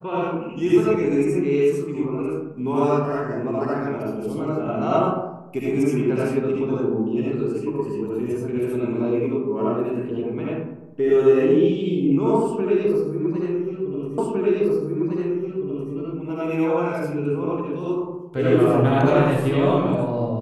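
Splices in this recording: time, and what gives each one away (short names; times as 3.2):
14.18 repeat of the last 1.76 s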